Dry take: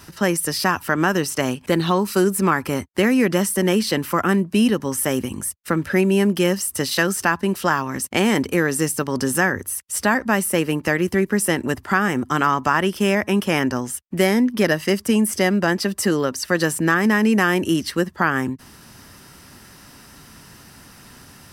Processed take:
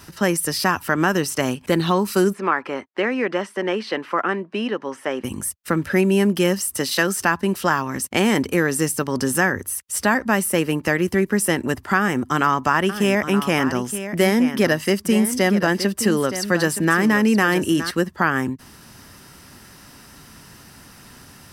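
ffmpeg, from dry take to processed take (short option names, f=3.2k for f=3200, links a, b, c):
-filter_complex "[0:a]asplit=3[a][b][c];[a]afade=t=out:st=2.32:d=0.02[d];[b]highpass=390,lowpass=2.7k,afade=t=in:st=2.32:d=0.02,afade=t=out:st=5.23:d=0.02[e];[c]afade=t=in:st=5.23:d=0.02[f];[d][e][f]amix=inputs=3:normalize=0,asettb=1/sr,asplit=3[g][h][i];[g]atrim=end=6.774[j];[h]atrim=start=6.77:end=7.19,asetpts=PTS-STARTPTS,afade=t=in:d=0.004:c=qsin,afade=t=out:st=0.416:d=0.004:c=qsin,highpass=160[k];[i]atrim=start=7.186[l];[j][k]acrossfade=d=0.004:c1=hsin:c2=qsin[m];[m][l]acrossfade=d=0.004:c1=qsin:c2=hsin,asettb=1/sr,asplit=3[n][o][p];[n]atrim=end=11.974[q];[o]atrim=start=11.97:end=17.91,asetpts=PTS-STARTPTS,afade=t=in:d=0.004:c=qsin,afade=t=out:st=5.936:d=0.004:c=qsin,aecho=1:1:920:0.282,atrim=end_sample=261954[r];[p]atrim=start=17.906[s];[q][r]acrossfade=d=0.004:c1=hsin:c2=qsin[t];[t][s]acrossfade=d=0.004:c1=qsin:c2=hsin"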